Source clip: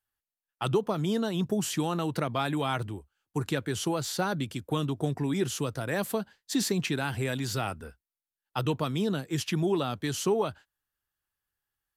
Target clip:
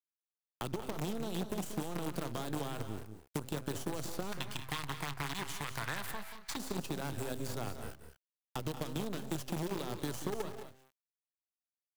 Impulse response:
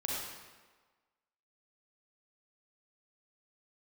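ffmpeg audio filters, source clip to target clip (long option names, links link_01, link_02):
-filter_complex "[0:a]asuperstop=centerf=2100:order=8:qfactor=3.2,highshelf=frequency=6000:gain=12,bandreject=frequency=130.9:width_type=h:width=4,bandreject=frequency=261.8:width_type=h:width=4,bandreject=frequency=392.7:width_type=h:width=4,bandreject=frequency=523.6:width_type=h:width=4,bandreject=frequency=654.5:width_type=h:width=4,bandreject=frequency=785.4:width_type=h:width=4,bandreject=frequency=916.3:width_type=h:width=4,bandreject=frequency=1047.2:width_type=h:width=4,bandreject=frequency=1178.1:width_type=h:width=4,bandreject=frequency=1309:width_type=h:width=4,bandreject=frequency=1439.9:width_type=h:width=4,bandreject=frequency=1570.8:width_type=h:width=4,bandreject=frequency=1701.7:width_type=h:width=4,bandreject=frequency=1832.6:width_type=h:width=4,bandreject=frequency=1963.5:width_type=h:width=4,bandreject=frequency=2094.4:width_type=h:width=4,bandreject=frequency=2225.3:width_type=h:width=4,bandreject=frequency=2356.2:width_type=h:width=4,bandreject=frequency=2487.1:width_type=h:width=4,alimiter=limit=-19dB:level=0:latency=1:release=222,acompressor=threshold=-49dB:ratio=2,acrusher=bits=7:dc=4:mix=0:aa=0.000001,acrossover=split=580|1200[link_01][link_02][link_03];[link_01]acompressor=threshold=-44dB:ratio=4[link_04];[link_02]acompressor=threshold=-57dB:ratio=4[link_05];[link_03]acompressor=threshold=-55dB:ratio=4[link_06];[link_04][link_05][link_06]amix=inputs=3:normalize=0,asettb=1/sr,asplit=3[link_07][link_08][link_09];[link_07]atrim=end=4.324[link_10];[link_08]atrim=start=4.32:end=6.57,asetpts=PTS-STARTPTS,afade=type=in:duration=0.004:curve=qsin,afade=type=out:start_time=2.246:duration=0.004:curve=qsin,equalizer=frequency=250:width_type=o:width=1:gain=-8,equalizer=frequency=500:width_type=o:width=1:gain=-10,equalizer=frequency=1000:width_type=o:width=1:gain=6,equalizer=frequency=2000:width_type=o:width=1:gain=10,equalizer=frequency=4000:width_type=o:width=1:gain=4[link_11];[link_09]atrim=start=6.566[link_12];[link_10][link_11]acrossfade=duration=0.004:curve1=hsin:curve2=qsin[link_13];[link_13][link_12]acrossfade=duration=0.004:curve1=qsin:curve2=hsin,aecho=1:1:184|212:0.266|0.251,volume=9dB"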